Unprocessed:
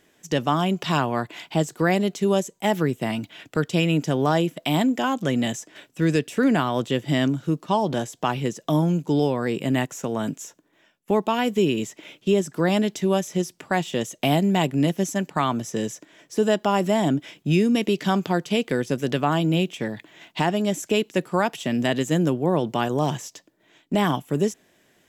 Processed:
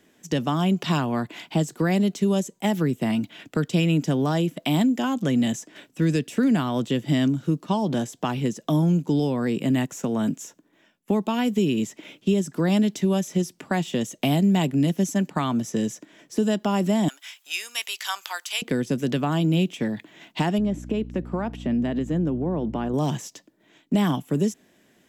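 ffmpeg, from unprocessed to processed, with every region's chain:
-filter_complex "[0:a]asettb=1/sr,asplit=3[a][b][c];[a]atrim=end=17.084[d];[b]atrim=start=17.08:end=18.62,asetpts=PTS-STARTPTS,afade=t=in:d=0.004:c=qsin,afade=t=out:st=1.536:d=0.004:c=qsin,highpass=f=970:w=0.5412,highpass=f=970:w=1.3066,highshelf=f=4.9k:g=11.5,acompressor=mode=upward:threshold=-49dB:ratio=2.5:attack=3.2:release=140:knee=2.83:detection=peak[e];[c]atrim=start=18.616[f];[d][e]acrossfade=d=0.004:c1=hsin:c2=qsin[g];[g][f]acrossfade=d=0.004:c1=qsin:c2=hsin,asettb=1/sr,asplit=3[h][i][j];[h]atrim=end=20.584[k];[i]atrim=start=20.58:end=22.94,asetpts=PTS-STARTPTS,afade=t=in:d=0.004:c=qsin,afade=t=out:st=2.356:d=0.004:c=qsin,lowpass=f=1.2k:p=1,acompressor=threshold=-24dB:ratio=2.5:attack=3.2:release=140:knee=1:detection=peak,aeval=exprs='val(0)+0.0141*(sin(2*PI*60*n/s)+sin(2*PI*2*60*n/s)/2+sin(2*PI*3*60*n/s)/3+sin(2*PI*4*60*n/s)/4+sin(2*PI*5*60*n/s)/5)':c=same[l];[j]atrim=start=22.936[m];[k][l]acrossfade=d=0.004:c1=hsin:c2=qsin[n];[n][m]acrossfade=d=0.004:c1=qsin:c2=hsin,equalizer=f=230:t=o:w=0.99:g=7,acrossover=split=180|3000[o][p][q];[p]acompressor=threshold=-22dB:ratio=3[r];[o][r][q]amix=inputs=3:normalize=0,volume=-1dB"

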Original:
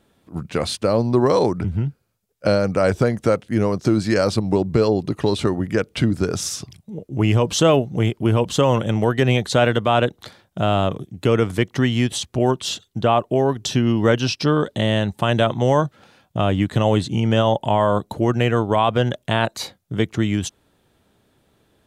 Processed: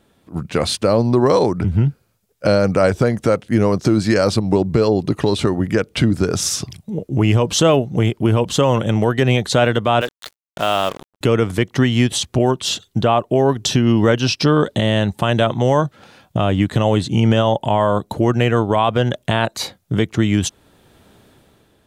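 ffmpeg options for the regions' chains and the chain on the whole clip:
-filter_complex "[0:a]asettb=1/sr,asplit=3[a][b][c];[a]atrim=end=10.014[d];[b]atrim=start=10.01:end=11.21,asetpts=PTS-STARTPTS,afade=t=in:d=0.004:c=qsin,afade=t=out:st=1.196:d=0.004:c=qsin,highpass=f=960:p=1,acrusher=bits=5:mix=0:aa=0.5[e];[c]atrim=start=11.206[f];[d][e]acrossfade=d=0.004:c1=hsin:c2=qsin[g];[g][f]acrossfade=d=0.004:c1=qsin:c2=hsin,dynaudnorm=f=150:g=9:m=11.5dB,alimiter=limit=-7.5dB:level=0:latency=1:release=462,volume=3dB"

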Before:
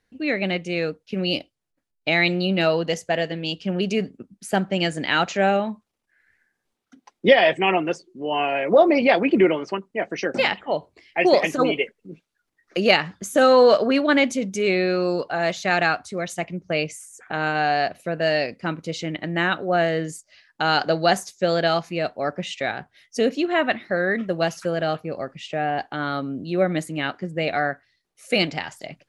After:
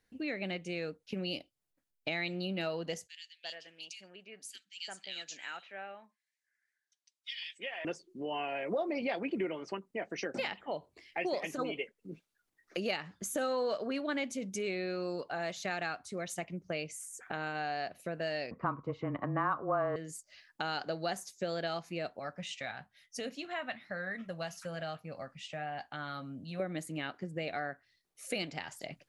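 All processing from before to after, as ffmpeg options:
-filter_complex "[0:a]asettb=1/sr,asplit=3[a][b][c];[a]atrim=end=3.074[d];[b]atrim=start=3.07:end=7.85,asetpts=PTS-STARTPTS,afade=t=in:d=0.004:c=qsin,afade=t=out:st=4.776:d=0.004:c=qsin,lowpass=5.9k,aderivative,acrossover=split=2400[e][f];[e]adelay=350[g];[g][f]amix=inputs=2:normalize=0,atrim=end_sample=210798[h];[c]atrim=start=7.846[i];[d][h]acrossfade=d=0.004:c1=hsin:c2=qsin[j];[j][i]acrossfade=d=0.004:c1=qsin:c2=hsin,asettb=1/sr,asplit=3[k][l][m];[k]atrim=end=18.514[n];[l]atrim=start=18.51:end=19.96,asetpts=PTS-STARTPTS,afade=t=in:d=0.004:c=qsin,afade=t=out:st=1.446:d=0.004:c=qsin,afreqshift=-19,acontrast=79,lowpass=f=1.1k:t=q:w=11[o];[m]atrim=start=19.956[p];[n][o]acrossfade=d=0.004:c1=hsin:c2=qsin[q];[q][p]acrossfade=d=0.004:c1=qsin:c2=hsin,asettb=1/sr,asplit=3[r][s][t];[r]atrim=end=22.194[u];[s]atrim=start=22.19:end=26.6,asetpts=PTS-STARTPTS,afade=t=in:d=0.004:c=qsin,afade=t=out:st=4.406:d=0.004:c=qsin,equalizer=f=370:t=o:w=0.74:g=-13.5,flanger=delay=6.4:depth=1.7:regen=-69:speed=1.1:shape=sinusoidal[v];[t]atrim=start=26.596[w];[u][v]acrossfade=d=0.004:c1=hsin:c2=qsin[x];[x][w]acrossfade=d=0.004:c1=qsin:c2=hsin,highshelf=f=8.5k:g=8,acompressor=threshold=-32dB:ratio=2.5,volume=-5.5dB"

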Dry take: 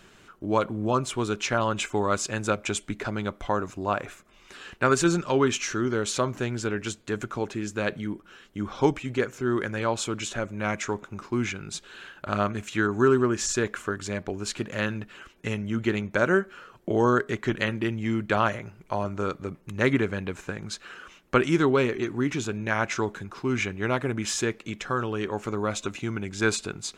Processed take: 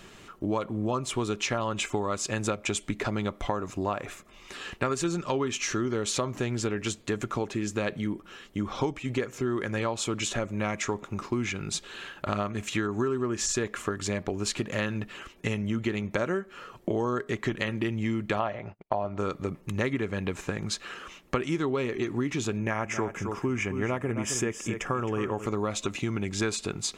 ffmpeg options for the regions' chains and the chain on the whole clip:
-filter_complex "[0:a]asettb=1/sr,asplit=3[a][b][c];[a]atrim=end=18.394[d];[b]atrim=start=18.39:end=19.18,asetpts=PTS-STARTPTS,afade=t=in:d=0.004:c=qsin,afade=t=out:st=0.786:d=0.004:c=qsin,lowpass=f=4.4k:w=0.5412,lowpass=f=4.4k:w=1.3066,agate=range=-38dB:threshold=-47dB:ratio=16:release=100:detection=peak,equalizer=f=690:w=1.9:g=9.5[e];[c]atrim=start=19.176[f];[d][e]acrossfade=d=0.004:c1=hsin:c2=qsin[g];[g][f]acrossfade=d=0.004:c1=qsin:c2=hsin,asettb=1/sr,asplit=3[h][i][j];[h]atrim=end=22.594[k];[i]atrim=start=22.59:end=25.46,asetpts=PTS-STARTPTS,afade=t=in:d=0.004:c=qsin,afade=t=out:st=2.866:d=0.004:c=qsin,equalizer=f=4k:t=o:w=0.55:g=-13.5,bandreject=f=4.1k:w=5.5,aecho=1:1:266:0.282,atrim=end_sample=126567[l];[j]atrim=start=25.456[m];[k][l]acrossfade=d=0.004:c1=hsin:c2=qsin[n];[n][m]acrossfade=d=0.004:c1=qsin:c2=hsin,bandreject=f=1.5k:w=8.5,acompressor=threshold=-30dB:ratio=6,volume=4.5dB"

